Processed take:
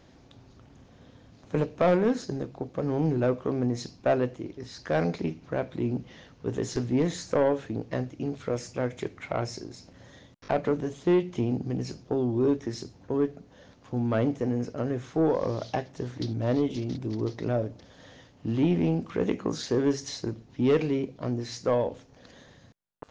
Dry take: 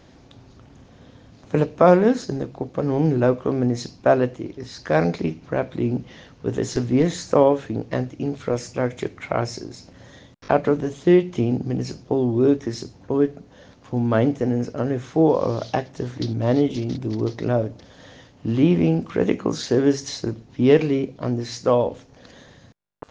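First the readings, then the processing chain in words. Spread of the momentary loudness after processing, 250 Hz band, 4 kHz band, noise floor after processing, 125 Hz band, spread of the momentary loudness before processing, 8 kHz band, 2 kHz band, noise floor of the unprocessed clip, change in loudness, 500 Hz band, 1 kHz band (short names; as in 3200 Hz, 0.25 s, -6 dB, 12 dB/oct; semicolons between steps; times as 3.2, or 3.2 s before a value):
10 LU, -6.5 dB, -5.5 dB, -56 dBFS, -6.5 dB, 11 LU, n/a, -7.0 dB, -50 dBFS, -7.0 dB, -7.0 dB, -8.0 dB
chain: soft clip -9.5 dBFS, distortion -16 dB; gain -5.5 dB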